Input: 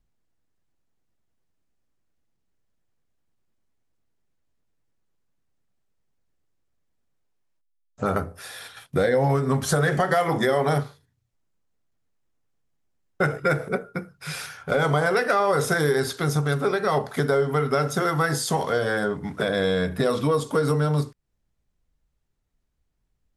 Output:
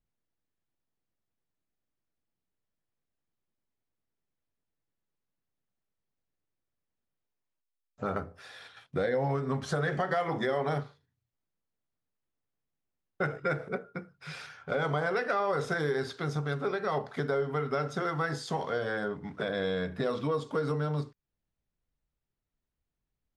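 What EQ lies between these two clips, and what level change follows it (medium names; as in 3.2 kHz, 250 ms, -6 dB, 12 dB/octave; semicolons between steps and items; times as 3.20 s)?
low-pass 4.7 kHz 12 dB/octave; bass shelf 72 Hz -6.5 dB; -8.0 dB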